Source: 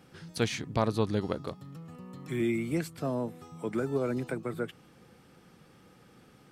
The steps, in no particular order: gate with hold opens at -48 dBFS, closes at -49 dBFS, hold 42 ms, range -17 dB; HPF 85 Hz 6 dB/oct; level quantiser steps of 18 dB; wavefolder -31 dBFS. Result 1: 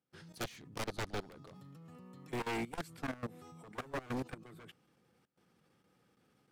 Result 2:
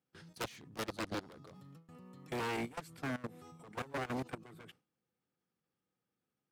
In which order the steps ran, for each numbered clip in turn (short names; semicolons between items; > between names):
gate with hold > HPF > wavefolder > level quantiser; wavefolder > level quantiser > HPF > gate with hold